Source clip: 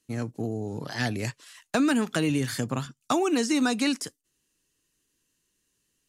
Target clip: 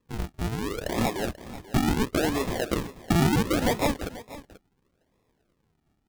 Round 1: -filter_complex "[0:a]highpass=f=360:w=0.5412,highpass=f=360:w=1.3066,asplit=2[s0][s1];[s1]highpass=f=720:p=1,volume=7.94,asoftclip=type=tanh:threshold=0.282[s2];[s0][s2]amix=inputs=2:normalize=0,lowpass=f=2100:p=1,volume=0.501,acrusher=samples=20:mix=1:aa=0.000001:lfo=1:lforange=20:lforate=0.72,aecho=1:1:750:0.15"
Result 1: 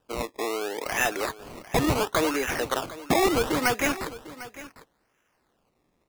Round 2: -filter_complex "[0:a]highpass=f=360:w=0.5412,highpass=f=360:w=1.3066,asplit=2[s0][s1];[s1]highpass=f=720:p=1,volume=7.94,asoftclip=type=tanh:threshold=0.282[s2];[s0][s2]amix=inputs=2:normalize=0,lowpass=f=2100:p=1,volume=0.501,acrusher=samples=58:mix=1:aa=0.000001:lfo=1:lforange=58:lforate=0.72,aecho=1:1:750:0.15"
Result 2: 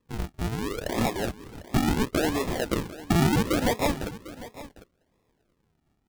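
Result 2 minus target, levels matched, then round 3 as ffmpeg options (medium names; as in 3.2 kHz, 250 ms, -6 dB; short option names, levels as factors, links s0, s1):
echo 264 ms late
-filter_complex "[0:a]highpass=f=360:w=0.5412,highpass=f=360:w=1.3066,asplit=2[s0][s1];[s1]highpass=f=720:p=1,volume=7.94,asoftclip=type=tanh:threshold=0.282[s2];[s0][s2]amix=inputs=2:normalize=0,lowpass=f=2100:p=1,volume=0.501,acrusher=samples=58:mix=1:aa=0.000001:lfo=1:lforange=58:lforate=0.72,aecho=1:1:486:0.15"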